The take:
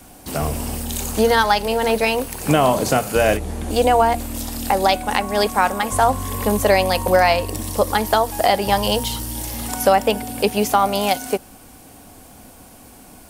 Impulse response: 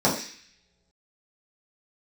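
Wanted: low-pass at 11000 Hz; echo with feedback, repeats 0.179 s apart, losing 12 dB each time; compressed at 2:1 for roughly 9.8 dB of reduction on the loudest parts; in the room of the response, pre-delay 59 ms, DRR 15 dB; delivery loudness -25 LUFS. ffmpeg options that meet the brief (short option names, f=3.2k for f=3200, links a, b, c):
-filter_complex "[0:a]lowpass=11k,acompressor=threshold=-29dB:ratio=2,aecho=1:1:179|358|537:0.251|0.0628|0.0157,asplit=2[a][b];[1:a]atrim=start_sample=2205,adelay=59[c];[b][c]afir=irnorm=-1:irlink=0,volume=-32dB[d];[a][d]amix=inputs=2:normalize=0,volume=2dB"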